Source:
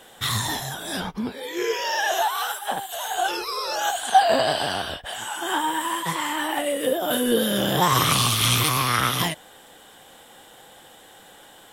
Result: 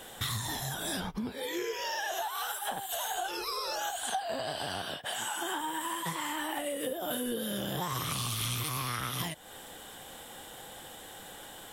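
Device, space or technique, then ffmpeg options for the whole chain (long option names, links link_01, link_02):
ASMR close-microphone chain: -filter_complex "[0:a]lowshelf=frequency=140:gain=7,acompressor=threshold=-33dB:ratio=6,highshelf=frequency=7400:gain=5,asettb=1/sr,asplit=3[link_01][link_02][link_03];[link_01]atrim=end=4.824[link_04];[link_02]atrim=start=4.82:end=5.61,asetpts=PTS-STARTPTS,afade=type=in:duration=0.004:curve=qsin,afade=type=out:start_time=0.786:duration=0.004:curve=qsin,highpass=frequency=130:width=0.5412,highpass=frequency=130:width=1.3066[link_05];[link_03]atrim=start=5.606[link_06];[link_04][link_05]acrossfade=duration=0.004:curve1=hsin:curve2=qsin[link_07];[link_07][link_06]acrossfade=duration=0.004:curve1=qsin:curve2=hsin"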